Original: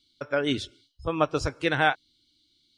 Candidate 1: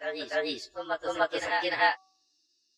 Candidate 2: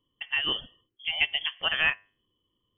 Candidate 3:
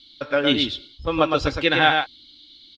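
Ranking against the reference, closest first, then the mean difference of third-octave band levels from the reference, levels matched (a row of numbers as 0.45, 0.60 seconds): 3, 1, 2; 5.5, 9.0, 13.0 decibels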